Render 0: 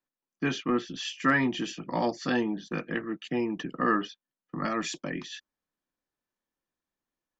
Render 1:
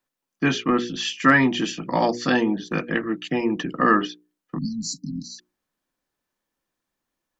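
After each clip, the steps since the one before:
mains-hum notches 60/120/180/240/300/360/420/480 Hz
time-frequency box erased 0:04.58–0:05.39, 300–3,900 Hz
level +8 dB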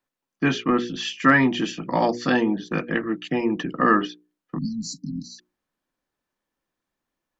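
high-shelf EQ 4,700 Hz −6.5 dB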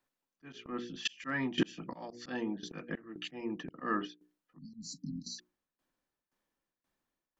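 shaped tremolo saw down 1.9 Hz, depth 85%
volume swells 423 ms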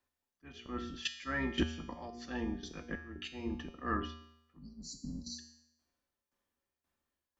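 sub-octave generator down 2 octaves, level −5 dB
tuned comb filter 79 Hz, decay 0.79 s, harmonics odd, mix 80%
level +10 dB

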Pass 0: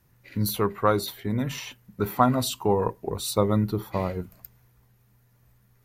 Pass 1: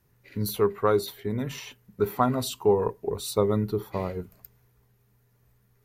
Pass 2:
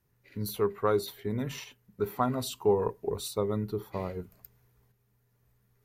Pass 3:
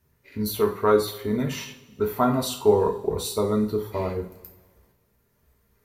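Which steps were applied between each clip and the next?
parametric band 420 Hz +9.5 dB 0.21 octaves; level −3.5 dB
shaped tremolo saw up 0.61 Hz, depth 45%; level −2 dB
coupled-rooms reverb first 0.36 s, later 1.7 s, from −20 dB, DRR 0.5 dB; level +4.5 dB

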